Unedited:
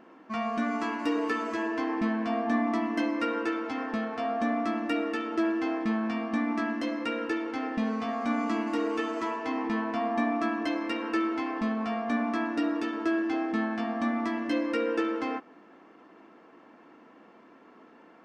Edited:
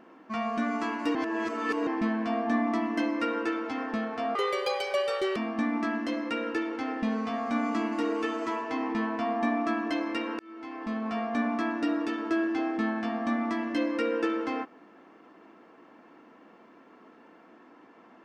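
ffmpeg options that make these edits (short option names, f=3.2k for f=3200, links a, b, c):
-filter_complex "[0:a]asplit=6[a][b][c][d][e][f];[a]atrim=end=1.152[g];[b]atrim=start=1.148:end=1.872,asetpts=PTS-STARTPTS,areverse[h];[c]atrim=start=1.868:end=4.354[i];[d]atrim=start=4.35:end=6.11,asetpts=PTS-STARTPTS,asetrate=76734,aresample=44100[j];[e]atrim=start=6.106:end=11.14,asetpts=PTS-STARTPTS,afade=t=out:st=5.03:d=0.004:c=hsin[k];[f]atrim=start=11.14,asetpts=PTS-STARTPTS,afade=t=in:d=0.79[l];[g][h]acrossfade=d=0.004:c1=hsin:c2=hsin[m];[m][i]acrossfade=d=0.004:c1=hsin:c2=hsin[n];[n][j]acrossfade=d=0.004:c1=hsin:c2=hsin[o];[k][l]concat=n=2:v=0:a=1[p];[o][p]acrossfade=d=0.004:c1=hsin:c2=hsin"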